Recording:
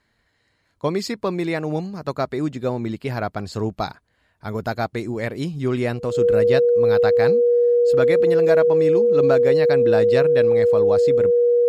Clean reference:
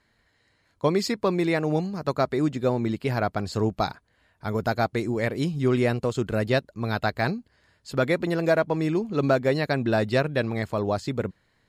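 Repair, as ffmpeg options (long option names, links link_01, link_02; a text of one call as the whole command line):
ffmpeg -i in.wav -af "bandreject=frequency=480:width=30" out.wav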